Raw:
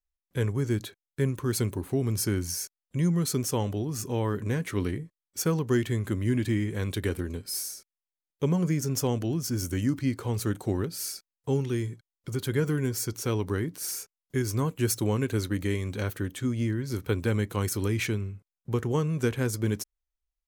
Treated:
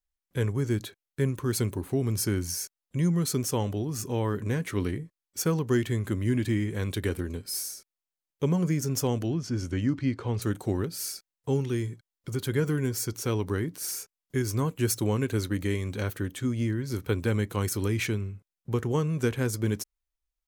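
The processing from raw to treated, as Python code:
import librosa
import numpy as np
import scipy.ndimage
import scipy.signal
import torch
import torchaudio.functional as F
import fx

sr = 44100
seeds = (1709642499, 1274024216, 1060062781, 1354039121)

y = fx.lowpass(x, sr, hz=4400.0, slope=12, at=(9.3, 10.42))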